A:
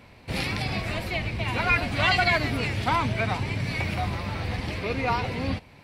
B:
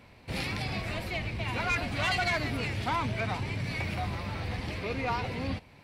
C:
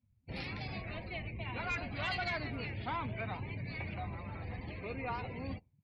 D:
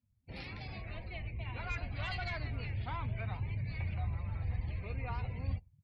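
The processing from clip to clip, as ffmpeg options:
-af "asoftclip=type=tanh:threshold=-18.5dB,volume=-4dB"
-af "afftdn=nr=34:nf=-42,volume=-7.5dB"
-af "asubboost=boost=8.5:cutoff=99,volume=-4dB"

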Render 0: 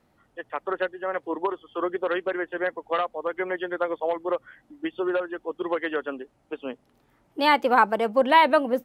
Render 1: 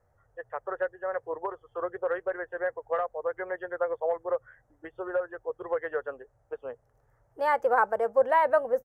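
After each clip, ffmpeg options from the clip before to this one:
-af "firequalizer=gain_entry='entry(120,0);entry(170,-19);entry(290,-24);entry(470,-4);entry(1000,-10);entry(1700,-8);entry(2400,-23);entry(3700,-29);entry(6000,-11);entry(10000,-14)':delay=0.05:min_phase=1,volume=3.5dB"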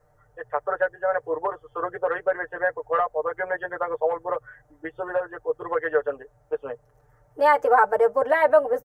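-filter_complex "[0:a]aecho=1:1:6.7:0.91,asplit=2[a][b];[b]alimiter=limit=-16.5dB:level=0:latency=1:release=115,volume=-2dB[c];[a][c]amix=inputs=2:normalize=0"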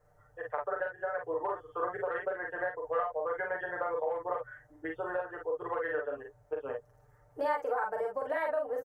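-filter_complex "[0:a]acompressor=threshold=-25dB:ratio=10,asplit=2[a][b];[b]aecho=0:1:40|50:0.596|0.562[c];[a][c]amix=inputs=2:normalize=0,volume=-5.5dB"

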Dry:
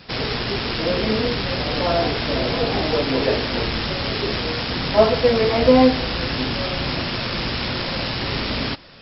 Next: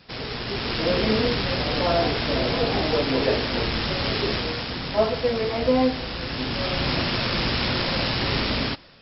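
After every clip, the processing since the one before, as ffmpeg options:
-af "dynaudnorm=f=240:g=5:m=10dB,volume=-8dB"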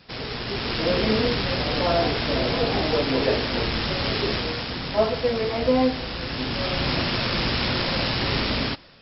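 -af anull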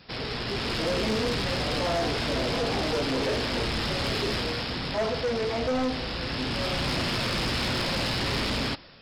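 -af "asoftclip=type=tanh:threshold=-23dB"

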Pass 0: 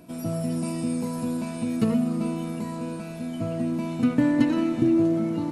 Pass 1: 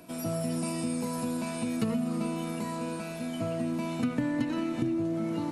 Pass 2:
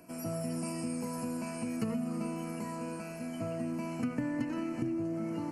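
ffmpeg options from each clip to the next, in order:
-filter_complex "[0:a]lowshelf=f=400:g=-8.5,acrossover=split=180[a][b];[b]acompressor=threshold=-32dB:ratio=10[c];[a][c]amix=inputs=2:normalize=0,volume=3dB"
-af "asuperstop=centerf=3600:order=4:qfactor=2.4,volume=-4.5dB"

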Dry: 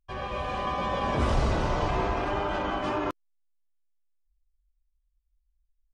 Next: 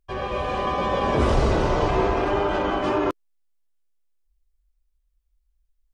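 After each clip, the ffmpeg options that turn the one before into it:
-af "equalizer=f=410:w=1.8:g=6.5,volume=4dB"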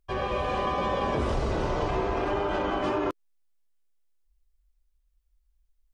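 -af "acompressor=threshold=-24dB:ratio=6"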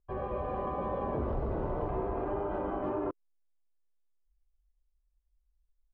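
-af "lowpass=1k,volume=-5dB"

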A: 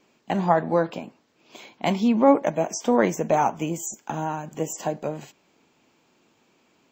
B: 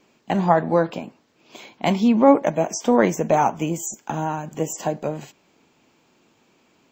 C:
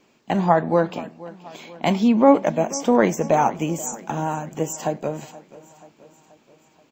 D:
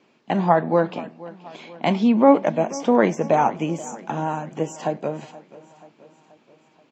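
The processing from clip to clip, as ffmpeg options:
-af "lowshelf=f=150:g=3,volume=2.5dB"
-af "aecho=1:1:480|960|1440|1920|2400:0.112|0.0628|0.0352|0.0197|0.011"
-af "highpass=120,lowpass=4.5k"

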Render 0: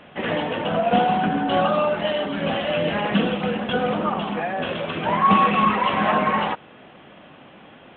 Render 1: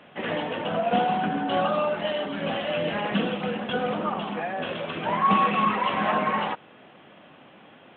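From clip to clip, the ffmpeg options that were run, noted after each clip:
-af "highpass=80,lowshelf=f=170:g=-3,volume=-4dB"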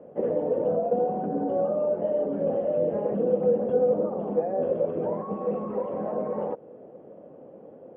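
-af "alimiter=limit=-21.5dB:level=0:latency=1:release=137,lowpass=f=500:t=q:w=4.4"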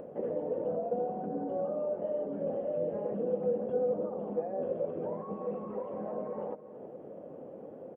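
-af "acompressor=mode=upward:threshold=-28dB:ratio=2.5,aecho=1:1:330:0.178,volume=-8dB"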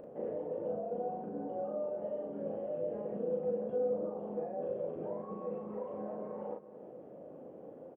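-filter_complex "[0:a]asplit=2[a][b];[b]adelay=38,volume=-2dB[c];[a][c]amix=inputs=2:normalize=0,volume=-6dB"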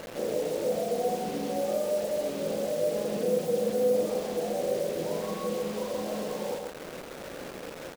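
-filter_complex "[0:a]acrusher=bits=7:mix=0:aa=0.000001,asplit=2[a][b];[b]aecho=0:1:132:0.631[c];[a][c]amix=inputs=2:normalize=0,volume=6.5dB"

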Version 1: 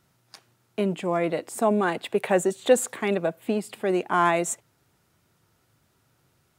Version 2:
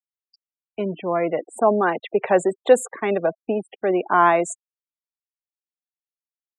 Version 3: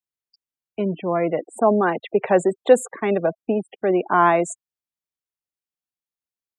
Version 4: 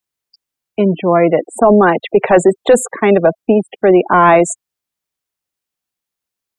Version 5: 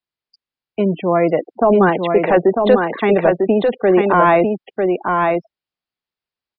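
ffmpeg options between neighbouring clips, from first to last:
-filter_complex "[0:a]afftfilt=real='re*gte(hypot(re,im),0.0251)':imag='im*gte(hypot(re,im),0.0251)':win_size=1024:overlap=0.75,acrossover=split=350|1800|5900[a][b][c][d];[b]dynaudnorm=f=210:g=11:m=11.5dB[e];[a][e][c][d]amix=inputs=4:normalize=0,volume=-2dB"
-af "equalizer=f=100:w=0.39:g=6.5,volume=-1dB"
-af "apsyclip=12dB,volume=-1.5dB"
-filter_complex "[0:a]asplit=2[a][b];[b]aecho=0:1:948:0.631[c];[a][c]amix=inputs=2:normalize=0,aresample=11025,aresample=44100,volume=-4dB"

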